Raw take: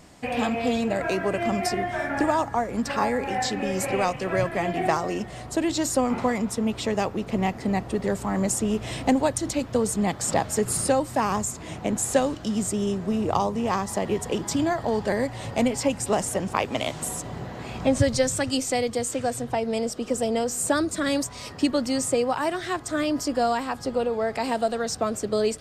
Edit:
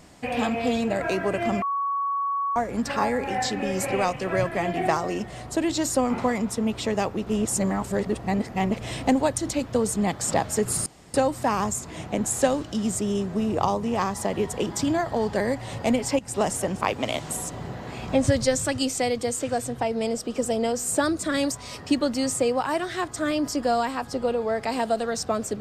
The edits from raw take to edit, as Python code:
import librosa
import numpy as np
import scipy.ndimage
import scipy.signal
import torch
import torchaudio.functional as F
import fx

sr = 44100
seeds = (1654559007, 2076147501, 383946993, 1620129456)

y = fx.edit(x, sr, fx.bleep(start_s=1.62, length_s=0.94, hz=1120.0, db=-23.0),
    fx.reverse_span(start_s=7.27, length_s=1.53),
    fx.insert_room_tone(at_s=10.86, length_s=0.28),
    fx.fade_in_from(start_s=15.91, length_s=0.28, curve='qsin', floor_db=-17.0), tone=tone)